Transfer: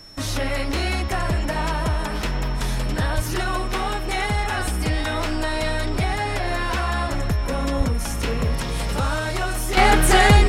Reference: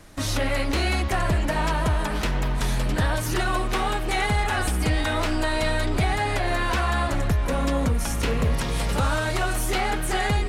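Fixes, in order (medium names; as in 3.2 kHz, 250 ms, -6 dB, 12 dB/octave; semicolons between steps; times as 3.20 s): band-stop 5.4 kHz, Q 30; 3.15–3.27 s: high-pass 140 Hz 24 dB/octave; 7.77–7.89 s: high-pass 140 Hz 24 dB/octave; 9.77 s: gain correction -10 dB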